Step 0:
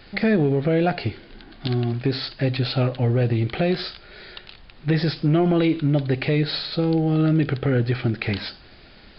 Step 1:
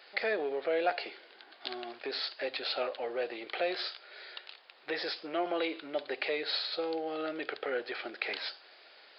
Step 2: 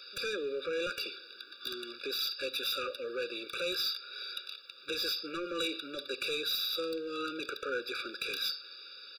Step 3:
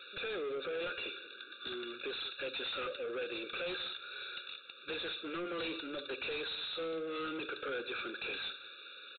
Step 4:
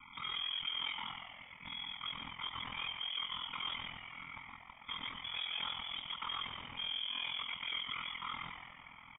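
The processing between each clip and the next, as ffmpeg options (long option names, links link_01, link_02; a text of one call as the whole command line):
ffmpeg -i in.wav -af "highpass=frequency=470:width=0.5412,highpass=frequency=470:width=1.3066,volume=-5.5dB" out.wav
ffmpeg -i in.wav -af "firequalizer=gain_entry='entry(810,0);entry(1400,6);entry(2200,2);entry(3400,13);entry(5300,15)':delay=0.05:min_phase=1,asoftclip=type=tanh:threshold=-27dB,afftfilt=real='re*eq(mod(floor(b*sr/1024/570),2),0)':imag='im*eq(mod(floor(b*sr/1024/570),2),0)':win_size=1024:overlap=0.75" out.wav
ffmpeg -i in.wav -af "aresample=8000,asoftclip=type=tanh:threshold=-38.5dB,aresample=44100,aecho=1:1:186:0.133,volume=3dB" out.wav
ffmpeg -i in.wav -filter_complex "[0:a]aeval=exprs='val(0)*sin(2*PI*21*n/s)':channel_layout=same,asplit=7[link_01][link_02][link_03][link_04][link_05][link_06][link_07];[link_02]adelay=118,afreqshift=96,volume=-7dB[link_08];[link_03]adelay=236,afreqshift=192,volume=-12.5dB[link_09];[link_04]adelay=354,afreqshift=288,volume=-18dB[link_10];[link_05]adelay=472,afreqshift=384,volume=-23.5dB[link_11];[link_06]adelay=590,afreqshift=480,volume=-29.1dB[link_12];[link_07]adelay=708,afreqshift=576,volume=-34.6dB[link_13];[link_01][link_08][link_09][link_10][link_11][link_12][link_13]amix=inputs=7:normalize=0,lowpass=frequency=3100:width_type=q:width=0.5098,lowpass=frequency=3100:width_type=q:width=0.6013,lowpass=frequency=3100:width_type=q:width=0.9,lowpass=frequency=3100:width_type=q:width=2.563,afreqshift=-3700,volume=1dB" out.wav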